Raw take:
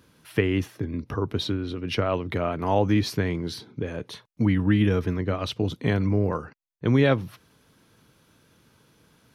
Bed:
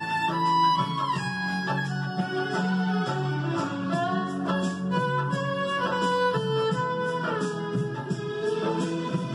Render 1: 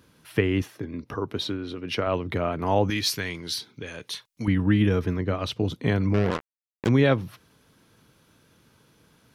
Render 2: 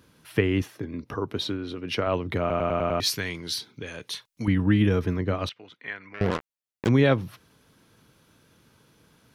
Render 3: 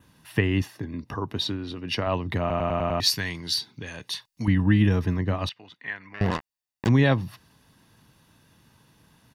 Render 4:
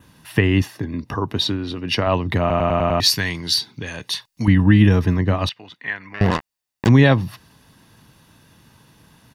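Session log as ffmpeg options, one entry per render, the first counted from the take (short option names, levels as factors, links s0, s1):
-filter_complex "[0:a]asettb=1/sr,asplit=3[s0][s1][s2];[s0]atrim=end=0.624[s3];[s1]atrim=start=0.62:end=2.07,asetpts=PTS-STARTPTS,afade=t=in:d=0.004:c=qsin,afade=t=out:st=1.446:d=0.004:c=qsin,lowshelf=f=160:g=-10[s4];[s2]atrim=start=2.066[s5];[s3][s4]acrossfade=d=0.004:c1=hsin:c2=qsin[s6];[s6][s5]acrossfade=d=0.004:c1=qsin:c2=hsin,asettb=1/sr,asplit=3[s7][s8][s9];[s7]atrim=end=2.904[s10];[s8]atrim=start=2.9:end=4.48,asetpts=PTS-STARTPTS,afade=t=in:d=0.004:c=qsin,afade=t=out:st=1.576:d=0.004:c=qsin,tiltshelf=f=1400:g=-9.5[s11];[s9]atrim=start=4.476[s12];[s10][s11]acrossfade=d=0.004:c1=hsin:c2=qsin[s13];[s13][s12]acrossfade=d=0.004:c1=qsin:c2=hsin,asettb=1/sr,asplit=3[s14][s15][s16];[s14]atrim=end=6.144[s17];[s15]atrim=start=6.14:end=6.89,asetpts=PTS-STARTPTS,afade=t=in:d=0.004:c=qsin,afade=t=out:st=0.746:d=0.004:c=qsin,acrusher=bits=3:mix=0:aa=0.5[s18];[s16]atrim=start=6.886[s19];[s17][s18]acrossfade=d=0.004:c1=hsin:c2=qsin[s20];[s20][s19]acrossfade=d=0.004:c1=qsin:c2=hsin"
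-filter_complex "[0:a]asettb=1/sr,asplit=3[s0][s1][s2];[s0]atrim=end=5.494[s3];[s1]atrim=start=5.49:end=6.21,asetpts=PTS-STARTPTS,afade=t=in:d=0.004:c=qsin,afade=t=out:st=0.716:d=0.004:c=qsin,bandpass=f=1900:t=q:w=2.4[s4];[s2]atrim=start=6.206[s5];[s3][s4]acrossfade=d=0.004:c1=hsin:c2=qsin[s6];[s6][s5]acrossfade=d=0.004:c1=qsin:c2=hsin,asplit=7[s7][s8][s9][s10][s11][s12][s13];[s7]atrim=end=2.502[s14];[s8]atrim=start=2.398:end=2.502[s15];[s9]atrim=start=2.398:end=2.502[s16];[s10]atrim=start=2.398:end=2.502[s17];[s11]atrim=start=2.398:end=2.502[s18];[s12]atrim=start=2.398:end=2.502[s19];[s13]atrim=start=2.998[s20];[s14][s15]acrossfade=d=0.004:c1=hsin:c2=hsin[s21];[s21][s16]acrossfade=d=0.004:c1=hsin:c2=hsin[s22];[s22][s17]acrossfade=d=0.004:c1=hsin:c2=hsin[s23];[s23][s18]acrossfade=d=0.004:c1=hsin:c2=hsin[s24];[s24][s19]acrossfade=d=0.004:c1=hsin:c2=hsin[s25];[s25][s20]acrossfade=d=0.004:c1=hsin:c2=hsin"
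-af "adynamicequalizer=threshold=0.00282:dfrequency=4700:dqfactor=4.7:tfrequency=4700:tqfactor=4.7:attack=5:release=100:ratio=0.375:range=3:mode=boostabove:tftype=bell,aecho=1:1:1.1:0.44"
-af "volume=2.24,alimiter=limit=0.794:level=0:latency=1"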